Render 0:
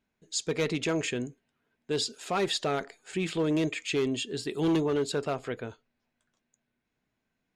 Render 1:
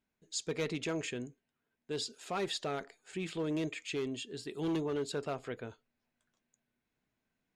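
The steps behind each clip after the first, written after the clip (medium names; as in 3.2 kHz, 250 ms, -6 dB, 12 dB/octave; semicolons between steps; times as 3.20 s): gain riding 2 s; trim -8 dB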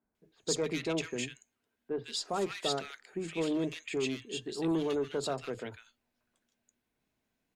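three bands offset in time mids, lows, highs 30/150 ms, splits 150/1600 Hz; Chebyshev shaper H 6 -37 dB, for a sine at -21.5 dBFS; trim +3.5 dB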